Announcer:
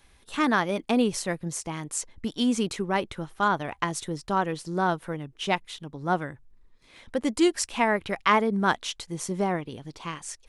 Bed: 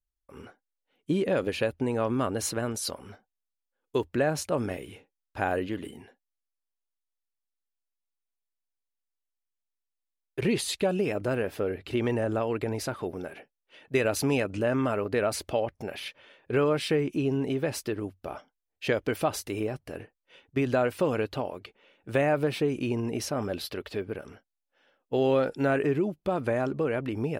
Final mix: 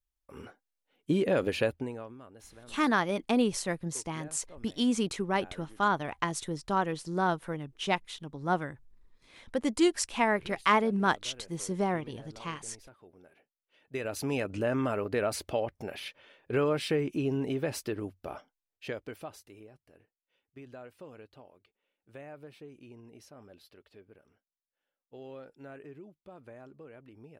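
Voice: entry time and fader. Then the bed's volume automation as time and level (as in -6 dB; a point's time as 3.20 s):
2.40 s, -3.0 dB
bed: 1.69 s -0.5 dB
2.20 s -23 dB
13.06 s -23 dB
14.52 s -3 dB
18.39 s -3 dB
19.68 s -22 dB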